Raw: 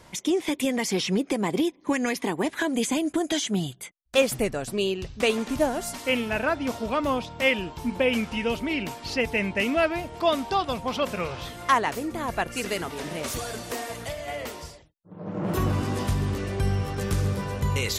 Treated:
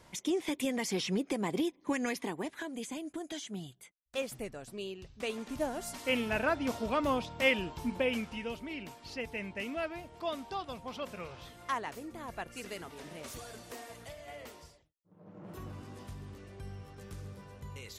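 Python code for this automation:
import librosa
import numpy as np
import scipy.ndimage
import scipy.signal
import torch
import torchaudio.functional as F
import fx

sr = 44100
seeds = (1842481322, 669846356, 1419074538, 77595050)

y = fx.gain(x, sr, db=fx.line((2.11, -7.5), (2.71, -15.0), (5.13, -15.0), (6.25, -5.0), (7.76, -5.0), (8.6, -13.5), (14.55, -13.5), (15.39, -20.0)))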